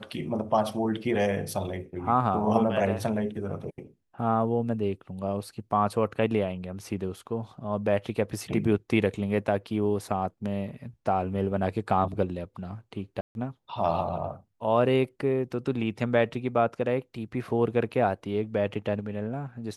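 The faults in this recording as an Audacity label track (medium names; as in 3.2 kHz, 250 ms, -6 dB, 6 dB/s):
13.210000	13.350000	dropout 141 ms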